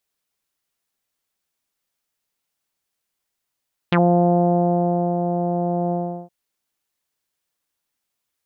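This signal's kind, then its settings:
subtractive voice saw F3 24 dB per octave, low-pass 720 Hz, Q 3.1, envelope 2.5 octaves, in 0.07 s, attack 4.2 ms, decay 1.24 s, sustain −7 dB, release 0.37 s, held 2.00 s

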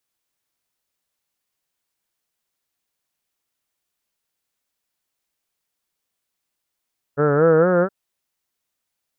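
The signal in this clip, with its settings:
vowel by formant synthesis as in heard, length 0.72 s, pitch 139 Hz, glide +5.5 semitones, vibrato 4.4 Hz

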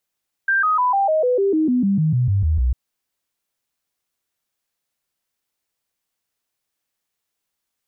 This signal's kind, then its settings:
stepped sweep 1,580 Hz down, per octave 3, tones 15, 0.15 s, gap 0.00 s −14.5 dBFS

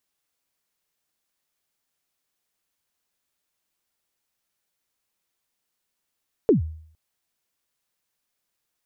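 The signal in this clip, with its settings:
synth kick length 0.46 s, from 490 Hz, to 79 Hz, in 127 ms, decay 0.59 s, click off, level −10.5 dB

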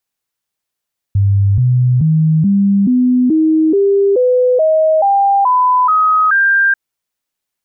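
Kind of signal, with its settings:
stepped sweep 99.4 Hz up, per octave 3, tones 13, 0.43 s, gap 0.00 s −8 dBFS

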